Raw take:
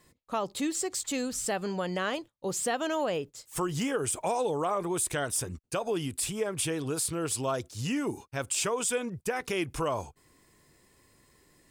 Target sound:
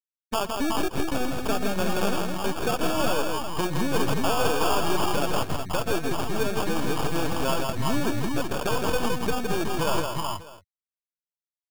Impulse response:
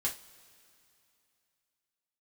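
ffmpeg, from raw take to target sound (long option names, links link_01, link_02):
-filter_complex "[0:a]highpass=frequency=80:width=0.5412,highpass=frequency=80:width=1.3066,afftfilt=real='re*gte(hypot(re,im),0.0631)':imag='im*gte(hypot(re,im),0.0631)':win_size=1024:overlap=0.75,asplit=2[link_01][link_02];[link_02]acompressor=threshold=-38dB:ratio=10,volume=0dB[link_03];[link_01][link_03]amix=inputs=2:normalize=0,acrusher=samples=22:mix=1:aa=0.000001,aeval=exprs='0.158*(cos(1*acos(clip(val(0)/0.158,-1,1)))-cos(1*PI/2))+0.0158*(cos(6*acos(clip(val(0)/0.158,-1,1)))-cos(6*PI/2))+0.0398*(cos(8*acos(clip(val(0)/0.158,-1,1)))-cos(8*PI/2))':channel_layout=same,aecho=1:1:118|164|371|372|596:0.126|0.596|0.447|0.562|0.112"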